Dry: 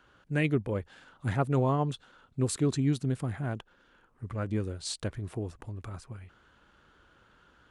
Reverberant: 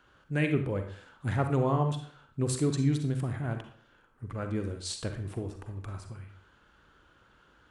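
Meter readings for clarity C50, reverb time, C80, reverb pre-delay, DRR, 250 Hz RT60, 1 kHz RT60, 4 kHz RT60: 7.5 dB, 0.55 s, 11.5 dB, 38 ms, 5.5 dB, 0.55 s, 0.55 s, 0.40 s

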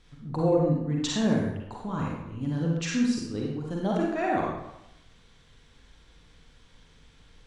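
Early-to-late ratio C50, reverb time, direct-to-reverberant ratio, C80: -0.5 dB, 0.85 s, -3.0 dB, 3.0 dB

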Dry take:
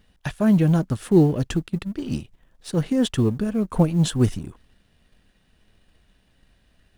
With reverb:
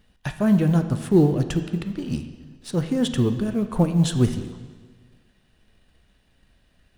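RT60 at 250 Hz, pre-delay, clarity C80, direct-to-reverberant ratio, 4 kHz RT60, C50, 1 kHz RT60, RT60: 1.6 s, 9 ms, 11.0 dB, 8.0 dB, 1.4 s, 10.0 dB, 1.5 s, 1.5 s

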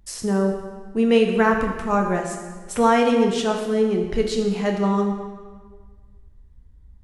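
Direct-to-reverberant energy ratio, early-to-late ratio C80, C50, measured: 2.0 dB, 6.5 dB, 5.0 dB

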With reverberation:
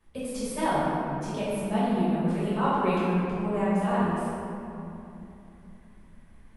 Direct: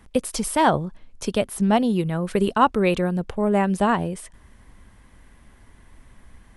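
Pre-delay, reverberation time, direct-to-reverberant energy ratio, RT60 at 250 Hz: 5 ms, 3.0 s, -11.5 dB, 4.0 s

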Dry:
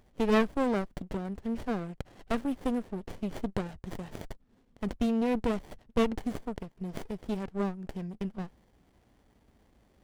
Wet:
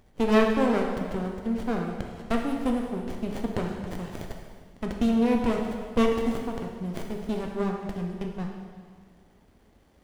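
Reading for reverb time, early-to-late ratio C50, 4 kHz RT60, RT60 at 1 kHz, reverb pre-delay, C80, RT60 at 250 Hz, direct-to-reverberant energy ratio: 1.8 s, 3.5 dB, 1.7 s, 1.8 s, 5 ms, 5.0 dB, 1.8 s, 1.0 dB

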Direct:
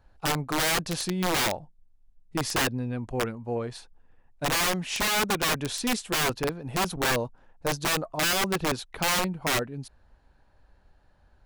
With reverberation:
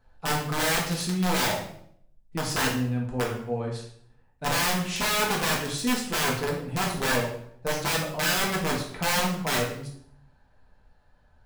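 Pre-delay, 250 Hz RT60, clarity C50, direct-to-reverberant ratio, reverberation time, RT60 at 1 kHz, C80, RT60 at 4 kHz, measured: 3 ms, 0.85 s, 5.5 dB, -2.5 dB, 0.65 s, 0.60 s, 9.0 dB, 0.55 s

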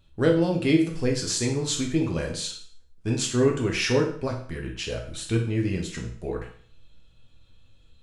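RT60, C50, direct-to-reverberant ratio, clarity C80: 0.50 s, 7.0 dB, 0.5 dB, 11.5 dB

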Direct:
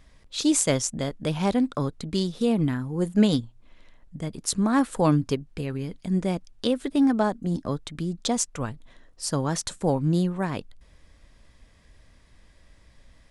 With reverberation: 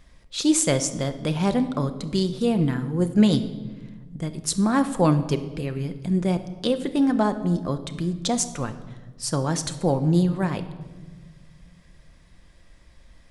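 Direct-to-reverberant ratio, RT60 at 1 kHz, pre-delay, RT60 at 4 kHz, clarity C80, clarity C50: 8.5 dB, 1.2 s, 6 ms, 1.0 s, 14.5 dB, 12.5 dB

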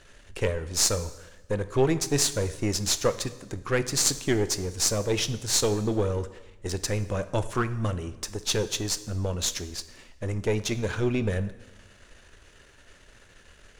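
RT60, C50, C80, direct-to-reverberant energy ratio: 1.1 s, 14.5 dB, 16.5 dB, 12.0 dB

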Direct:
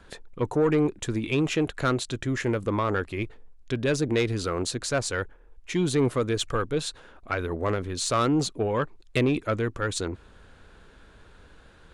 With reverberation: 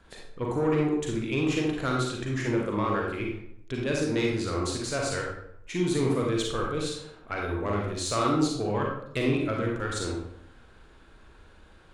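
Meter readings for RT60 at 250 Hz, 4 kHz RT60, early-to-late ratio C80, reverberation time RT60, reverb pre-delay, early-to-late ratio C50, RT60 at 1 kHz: 0.80 s, 0.50 s, 5.0 dB, 0.70 s, 35 ms, 0.5 dB, 0.70 s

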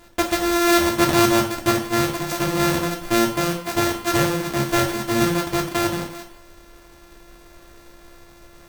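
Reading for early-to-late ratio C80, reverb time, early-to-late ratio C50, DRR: 11.0 dB, 0.55 s, 7.5 dB, 2.5 dB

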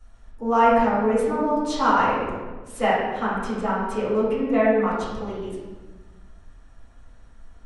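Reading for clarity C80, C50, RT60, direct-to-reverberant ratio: 2.0 dB, -1.0 dB, 1.3 s, -12.0 dB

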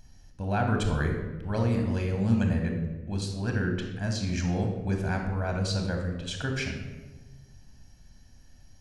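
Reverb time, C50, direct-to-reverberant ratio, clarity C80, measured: 1.3 s, 4.5 dB, 2.5 dB, 7.0 dB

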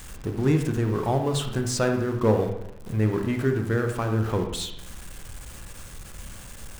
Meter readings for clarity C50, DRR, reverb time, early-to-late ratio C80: 6.5 dB, 4.0 dB, 0.80 s, 8.5 dB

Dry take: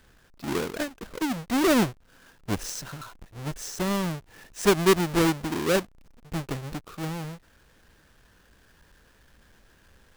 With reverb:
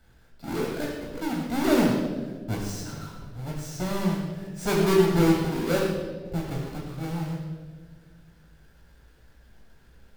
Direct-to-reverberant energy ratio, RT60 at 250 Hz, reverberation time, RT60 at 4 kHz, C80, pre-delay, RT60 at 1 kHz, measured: -3.0 dB, 2.2 s, 1.6 s, 1.1 s, 3.5 dB, 17 ms, 1.2 s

